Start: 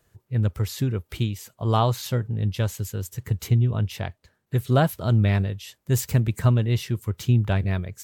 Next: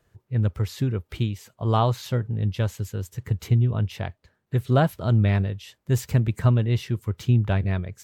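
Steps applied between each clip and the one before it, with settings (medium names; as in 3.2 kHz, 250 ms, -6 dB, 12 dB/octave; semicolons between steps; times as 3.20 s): treble shelf 5.8 kHz -10 dB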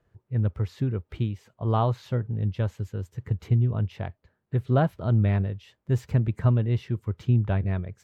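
low-pass 1.6 kHz 6 dB/octave; trim -2 dB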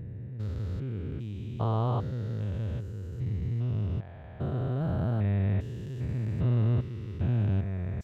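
spectrogram pixelated in time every 400 ms; trim -1 dB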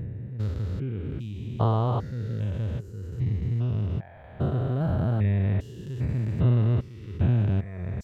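reverb removal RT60 1 s; trim +6.5 dB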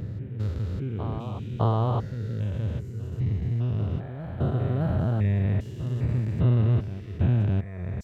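reverse echo 608 ms -10.5 dB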